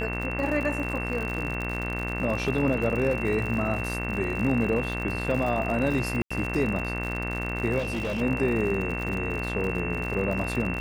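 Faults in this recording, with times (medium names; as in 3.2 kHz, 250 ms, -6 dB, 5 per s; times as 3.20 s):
buzz 60 Hz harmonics 38 -32 dBFS
crackle 78 per s -31 dBFS
whine 2.7 kHz -33 dBFS
6.22–6.30 s: dropout 85 ms
7.78–8.22 s: clipped -25.5 dBFS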